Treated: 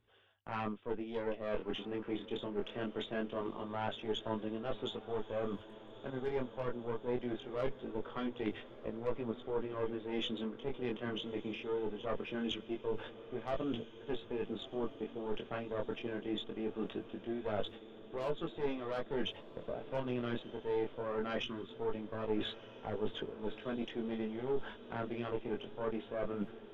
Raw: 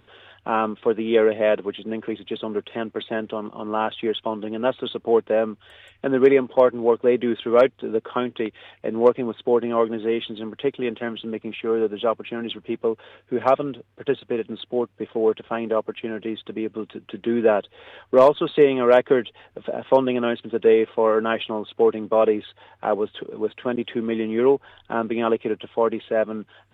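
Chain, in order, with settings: gate -39 dBFS, range -20 dB; Chebyshev shaper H 4 -15 dB, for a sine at -4.5 dBFS; bass shelf 60 Hz +8 dB; reverse; compression 12:1, threshold -35 dBFS, peak gain reduction 26.5 dB; reverse; chorus 0.22 Hz, delay 18 ms, depth 6.8 ms; on a send: echo that smears into a reverb 1277 ms, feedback 64%, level -15.5 dB; on the sum: time-frequency box 21.44–21.69 s, 410–1000 Hz -12 dB; trim +3.5 dB

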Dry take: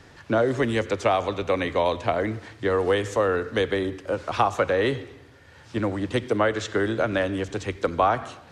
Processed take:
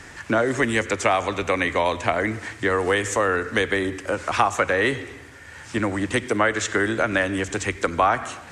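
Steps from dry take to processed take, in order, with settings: graphic EQ 125/500/2000/4000/8000 Hz -5/-4/+6/-5/+10 dB; in parallel at +2 dB: compression, threshold -31 dBFS, peak gain reduction 14.5 dB

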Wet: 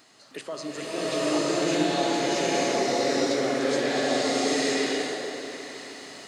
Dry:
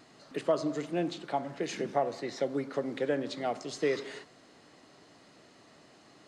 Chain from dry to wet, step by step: tilt EQ +2.5 dB/octave; peak limiter -26 dBFS, peak gain reduction 9 dB; on a send: delay with an opening low-pass 159 ms, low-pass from 200 Hz, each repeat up 1 oct, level -3 dB; on the sum: swelling reverb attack 910 ms, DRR -11.5 dB

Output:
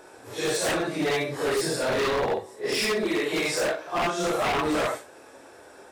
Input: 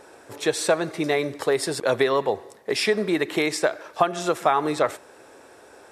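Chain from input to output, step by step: phase randomisation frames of 200 ms; 2.86–3.32 s: bass shelf 170 Hz -11 dB; wavefolder -19.5 dBFS

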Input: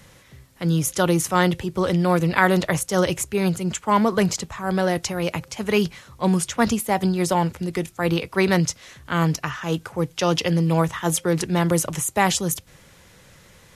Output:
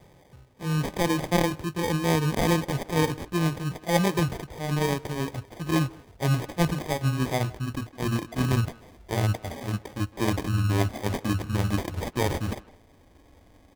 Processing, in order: pitch bend over the whole clip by -11 st starting unshifted; sample-and-hold 32×; vibrato 2.5 Hz 18 cents; speakerphone echo 160 ms, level -16 dB; harmonic-percussive split harmonic +5 dB; trim -7 dB

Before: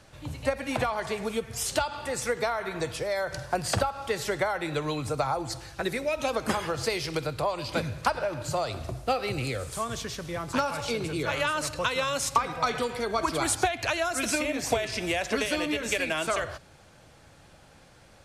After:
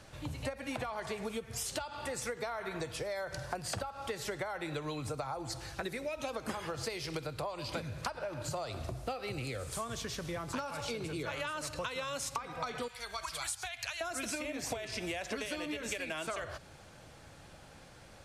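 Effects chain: 12.88–14.01 s: amplifier tone stack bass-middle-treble 10-0-10; compression 5:1, threshold -36 dBFS, peak gain reduction 16.5 dB

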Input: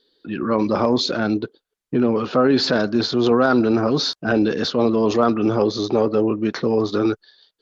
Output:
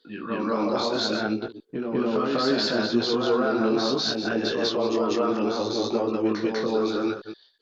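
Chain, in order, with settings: chunks repeated in reverse 122 ms, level -10.5 dB; peaking EQ 86 Hz -10 dB 2.6 oct; peak limiter -13.5 dBFS, peak gain reduction 7.5 dB; chorus 0.66 Hz, delay 17 ms, depth 6.3 ms; reverse echo 197 ms -4 dB

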